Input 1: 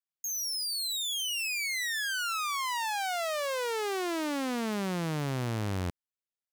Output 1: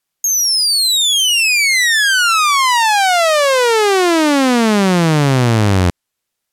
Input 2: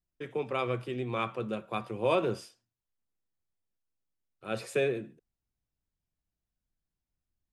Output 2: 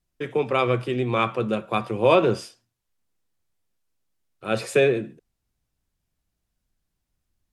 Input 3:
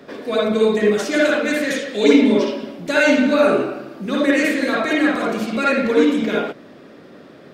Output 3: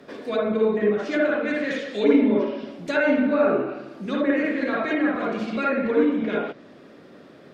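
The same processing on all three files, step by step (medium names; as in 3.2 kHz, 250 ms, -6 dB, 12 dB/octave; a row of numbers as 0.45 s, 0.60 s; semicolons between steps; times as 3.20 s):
low-pass that closes with the level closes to 1.8 kHz, closed at -14 dBFS; peak normalisation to -6 dBFS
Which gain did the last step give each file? +19.5 dB, +9.5 dB, -5.0 dB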